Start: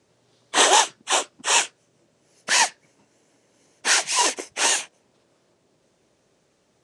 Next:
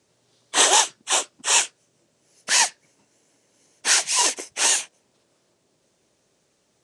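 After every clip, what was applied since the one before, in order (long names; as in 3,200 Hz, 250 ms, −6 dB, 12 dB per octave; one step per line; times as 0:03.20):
high-shelf EQ 3,700 Hz +7.5 dB
level −3.5 dB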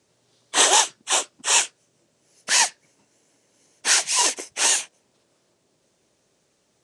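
no processing that can be heard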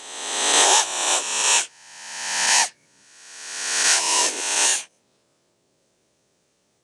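peak hold with a rise ahead of every peak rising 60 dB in 1.34 s
level −3 dB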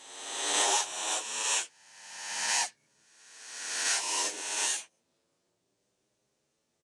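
barber-pole flanger 8.5 ms +0.56 Hz
level −8 dB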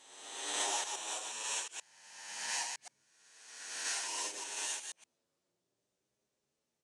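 delay that plays each chunk backwards 120 ms, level −4.5 dB
level −9 dB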